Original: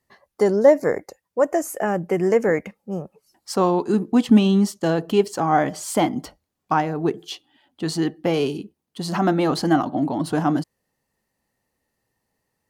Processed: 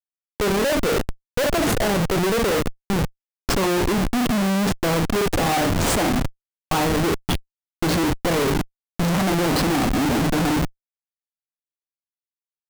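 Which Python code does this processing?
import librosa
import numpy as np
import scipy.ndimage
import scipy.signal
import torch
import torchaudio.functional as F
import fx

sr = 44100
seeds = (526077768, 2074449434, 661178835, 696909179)

y = fx.room_early_taps(x, sr, ms=(36, 53), db=(-9.5, -11.0))
y = fx.schmitt(y, sr, flips_db=-27.0)
y = F.gain(torch.from_numpy(y), 1.5).numpy()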